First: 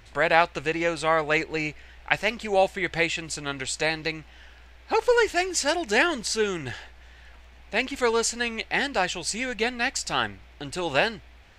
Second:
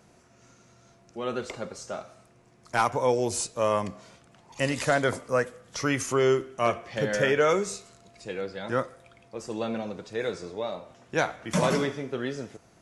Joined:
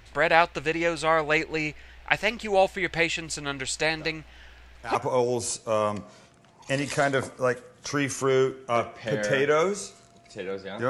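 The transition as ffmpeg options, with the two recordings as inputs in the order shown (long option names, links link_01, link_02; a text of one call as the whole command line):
ffmpeg -i cue0.wav -i cue1.wav -filter_complex "[1:a]asplit=2[link_01][link_02];[0:a]apad=whole_dur=10.89,atrim=end=10.89,atrim=end=4.952[link_03];[link_02]atrim=start=2.848:end=8.79[link_04];[link_01]atrim=start=1.88:end=2.85,asetpts=PTS-STARTPTS,volume=-11dB,afade=type=in:duration=0.004:curve=hsin,afade=type=out:start_time=0.966:duration=0.004:curve=hsin,adelay=3980[link_05];[link_03][link_04]acrossfade=duration=0.004:curve1=hsin:curve2=hsin[link_06];[link_06][link_05]amix=inputs=2:normalize=0" out.wav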